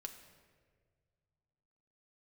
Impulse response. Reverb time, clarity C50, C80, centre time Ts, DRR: 1.8 s, 9.0 dB, 10.5 dB, 20 ms, 5.0 dB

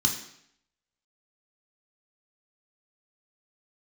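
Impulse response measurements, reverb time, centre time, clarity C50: 0.70 s, 23 ms, 8.0 dB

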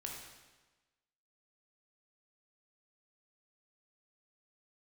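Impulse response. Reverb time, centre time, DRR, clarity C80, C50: 1.2 s, 57 ms, -1.0 dB, 4.5 dB, 2.0 dB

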